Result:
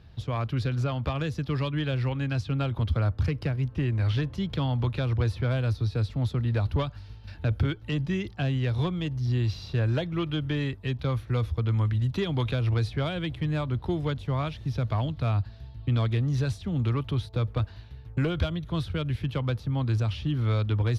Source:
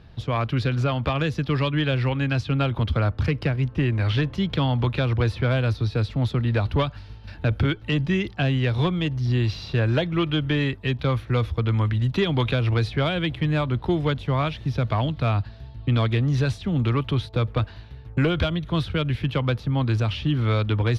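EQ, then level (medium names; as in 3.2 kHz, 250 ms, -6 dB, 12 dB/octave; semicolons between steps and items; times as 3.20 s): peaking EQ 83 Hz +6 dB 1.1 oct; treble shelf 4.2 kHz +6.5 dB; dynamic bell 2.7 kHz, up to -4 dB, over -41 dBFS, Q 0.82; -6.5 dB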